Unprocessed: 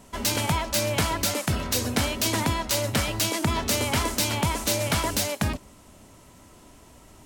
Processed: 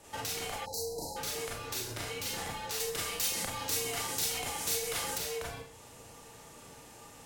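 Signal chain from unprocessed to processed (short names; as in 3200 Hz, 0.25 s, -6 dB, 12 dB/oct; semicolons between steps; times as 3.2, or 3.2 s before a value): Schroeder reverb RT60 0.35 s, combs from 29 ms, DRR -5 dB; compressor 6:1, threshold -30 dBFS, peak gain reduction 15.5 dB; tone controls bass -14 dB, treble 0 dB; frequency shift -130 Hz; 0.66–1.17 spectral delete 980–3900 Hz; 2.8–5.18 high shelf 4700 Hz +8 dB; gain -4 dB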